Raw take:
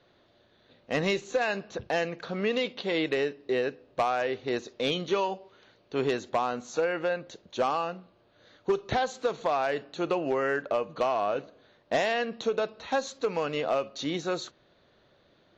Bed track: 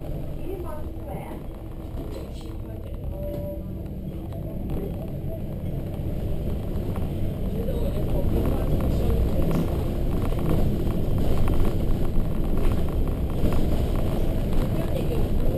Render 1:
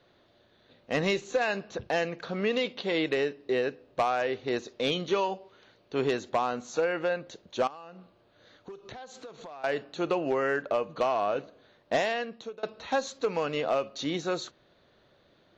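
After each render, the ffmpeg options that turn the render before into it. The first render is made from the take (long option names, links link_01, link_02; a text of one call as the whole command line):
ffmpeg -i in.wav -filter_complex "[0:a]asettb=1/sr,asplit=3[link_01][link_02][link_03];[link_01]atrim=end=7.674[link_04];[link_02]atrim=start=7.67:end=9.64,asetpts=PTS-STARTPTS,afade=type=in:duration=0.004:curve=qsin,afade=type=out:start_time=1.966:duration=0.004:curve=qsin,acompressor=threshold=-42dB:ratio=6:attack=3.2:release=140:knee=1:detection=peak[link_05];[link_03]atrim=start=9.636[link_06];[link_04][link_05]acrossfade=duration=0.004:curve1=hsin:curve2=qsin[link_07];[link_07][link_06]acrossfade=duration=0.004:curve1=qsin:curve2=hsin,asplit=2[link_08][link_09];[link_08]atrim=end=12.63,asetpts=PTS-STARTPTS,afade=type=out:start_time=11.96:duration=0.67:silence=0.0630957[link_10];[link_09]atrim=start=12.63,asetpts=PTS-STARTPTS,afade=type=in:duration=0.004:curve=hsin:silence=0.0630957[link_11];[link_10][link_11]concat=n=2:v=0:a=1" out.wav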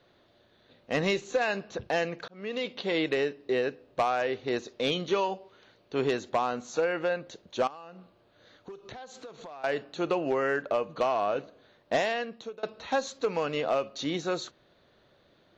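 ffmpeg -i in.wav -filter_complex "[0:a]asplit=2[link_01][link_02];[link_01]atrim=end=2.28,asetpts=PTS-STARTPTS,afade=type=out:start_time=2.276:duration=0.004:curve=hsin[link_03];[link_02]atrim=start=2.28,asetpts=PTS-STARTPTS,afade=type=in:duration=0.5[link_04];[link_03][link_04]concat=n=2:v=0:a=1" out.wav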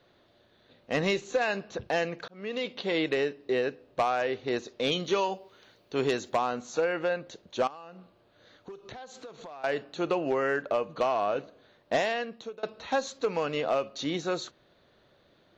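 ffmpeg -i in.wav -filter_complex "[0:a]asettb=1/sr,asplit=3[link_01][link_02][link_03];[link_01]atrim=end=4.914[link_04];[link_02]atrim=start=4.91:end=6.37,asetpts=PTS-STARTPTS,afade=type=in:duration=0.004:curve=qsin,afade=type=out:start_time=1.456:duration=0.004:curve=qsin,highshelf=frequency=6300:gain=10[link_05];[link_03]atrim=start=6.366[link_06];[link_04][link_05]acrossfade=duration=0.004:curve1=hsin:curve2=qsin[link_07];[link_07][link_06]acrossfade=duration=0.004:curve1=qsin:curve2=hsin" out.wav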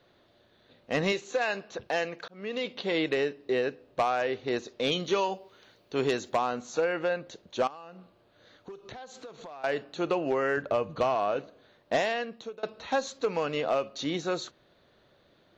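ffmpeg -i in.wav -filter_complex "[0:a]asettb=1/sr,asplit=3[link_01][link_02][link_03];[link_01]atrim=end=1.124[link_04];[link_02]atrim=start=1.12:end=2.29,asetpts=PTS-STARTPTS,afade=type=in:duration=0.004:curve=qsin,afade=type=out:start_time=1.166:duration=0.004:curve=qsin,lowshelf=frequency=230:gain=-10[link_05];[link_03]atrim=start=2.286[link_06];[link_04][link_05]acrossfade=duration=0.004:curve1=hsin:curve2=qsin[link_07];[link_07][link_06]acrossfade=duration=0.004:curve1=qsin:curve2=hsin,asettb=1/sr,asplit=3[link_08][link_09][link_10];[link_08]atrim=end=10.574[link_11];[link_09]atrim=start=10.57:end=11.15,asetpts=PTS-STARTPTS,afade=type=in:duration=0.004:curve=qsin,afade=type=out:start_time=0.576:duration=0.004:curve=qsin,equalizer=frequency=86:width_type=o:width=1.5:gain=13[link_12];[link_10]atrim=start=11.146[link_13];[link_11][link_12]acrossfade=duration=0.004:curve1=hsin:curve2=qsin[link_14];[link_14][link_13]acrossfade=duration=0.004:curve1=qsin:curve2=hsin" out.wav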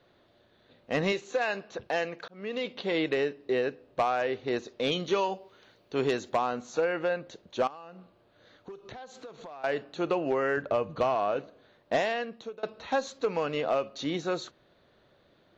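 ffmpeg -i in.wav -af "highshelf=frequency=4400:gain=-5" out.wav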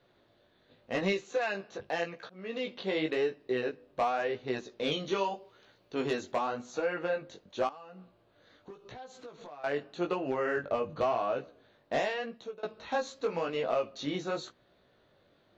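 ffmpeg -i in.wav -af "flanger=delay=15.5:depth=5.6:speed=0.88" out.wav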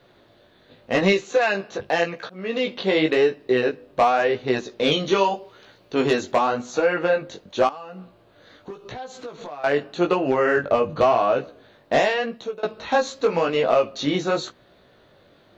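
ffmpeg -i in.wav -af "volume=11.5dB" out.wav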